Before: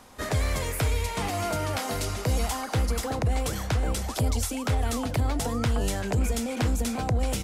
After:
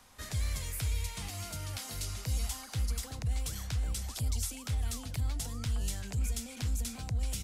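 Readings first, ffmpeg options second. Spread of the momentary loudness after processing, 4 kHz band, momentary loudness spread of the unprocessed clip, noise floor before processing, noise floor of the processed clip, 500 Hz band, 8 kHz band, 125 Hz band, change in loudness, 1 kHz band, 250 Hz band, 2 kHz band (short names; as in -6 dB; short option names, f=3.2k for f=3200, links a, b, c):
4 LU, -6.5 dB, 2 LU, -35 dBFS, -47 dBFS, -20.0 dB, -4.5 dB, -7.5 dB, -8.0 dB, -17.5 dB, -14.5 dB, -12.0 dB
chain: -filter_complex "[0:a]acrossover=split=250|3000[a][b][c];[b]acompressor=threshold=-44dB:ratio=2[d];[a][d][c]amix=inputs=3:normalize=0,equalizer=f=380:w=0.41:g=-9.5,volume=-4.5dB"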